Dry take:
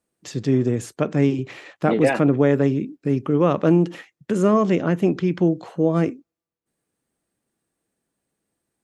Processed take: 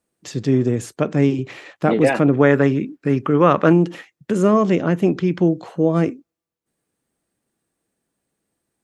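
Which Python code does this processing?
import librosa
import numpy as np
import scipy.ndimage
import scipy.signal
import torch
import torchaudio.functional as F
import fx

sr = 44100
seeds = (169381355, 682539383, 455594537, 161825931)

y = fx.peak_eq(x, sr, hz=1500.0, db=9.0, octaves=1.6, at=(2.37, 3.73))
y = y * librosa.db_to_amplitude(2.0)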